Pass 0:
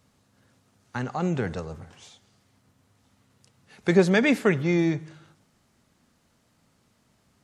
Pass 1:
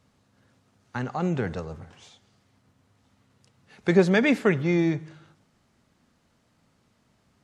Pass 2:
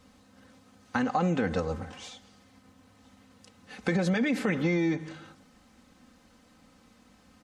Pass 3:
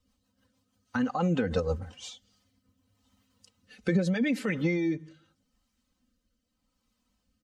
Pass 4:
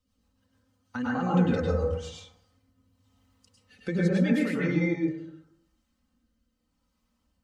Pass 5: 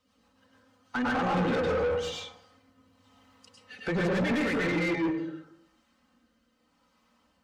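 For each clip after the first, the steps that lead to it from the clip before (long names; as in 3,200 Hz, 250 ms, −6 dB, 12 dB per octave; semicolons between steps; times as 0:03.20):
high-shelf EQ 7,900 Hz −9.5 dB
comb filter 3.9 ms, depth 76%; brickwall limiter −17.5 dBFS, peak gain reduction 11.5 dB; downward compressor 6 to 1, threshold −29 dBFS, peak gain reduction 8 dB; level +5.5 dB
spectral dynamics exaggerated over time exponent 1.5; rotating-speaker cabinet horn 6.3 Hz, later 0.8 Hz, at 0:01.71; speech leveller 0.5 s; level +4.5 dB
dense smooth reverb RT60 0.79 s, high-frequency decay 0.3×, pre-delay 90 ms, DRR −4.5 dB; level −4.5 dB
mid-hump overdrive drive 30 dB, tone 2,000 Hz, clips at −11 dBFS; level −8.5 dB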